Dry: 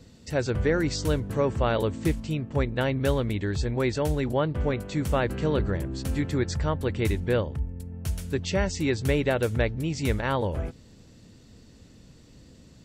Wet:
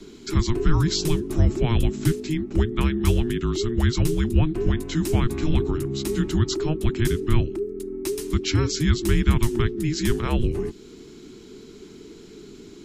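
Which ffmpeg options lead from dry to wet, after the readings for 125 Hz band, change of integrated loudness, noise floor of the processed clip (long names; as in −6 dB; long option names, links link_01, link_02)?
+5.0 dB, +3.5 dB, −44 dBFS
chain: -filter_complex "[0:a]afreqshift=-470,acrossover=split=180|3000[link_01][link_02][link_03];[link_02]acompressor=threshold=-40dB:ratio=2[link_04];[link_01][link_04][link_03]amix=inputs=3:normalize=0,volume=8dB"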